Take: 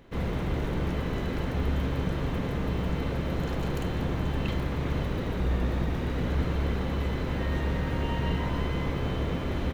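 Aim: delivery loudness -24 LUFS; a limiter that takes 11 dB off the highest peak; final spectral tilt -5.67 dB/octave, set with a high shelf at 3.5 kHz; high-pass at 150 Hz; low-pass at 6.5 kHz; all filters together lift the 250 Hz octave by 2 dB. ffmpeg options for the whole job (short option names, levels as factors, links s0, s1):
-af "highpass=150,lowpass=6500,equalizer=f=250:t=o:g=4,highshelf=f=3500:g=-8.5,volume=4.47,alimiter=limit=0.168:level=0:latency=1"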